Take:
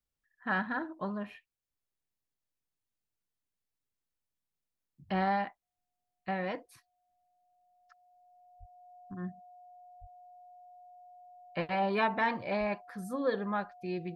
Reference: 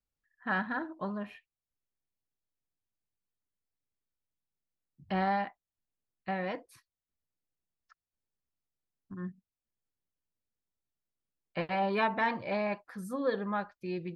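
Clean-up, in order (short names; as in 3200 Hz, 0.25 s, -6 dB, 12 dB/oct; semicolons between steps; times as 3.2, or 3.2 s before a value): notch 720 Hz, Q 30; 8.59–8.71 HPF 140 Hz 24 dB/oct; 10–10.12 HPF 140 Hz 24 dB/oct; 12.59–12.71 HPF 140 Hz 24 dB/oct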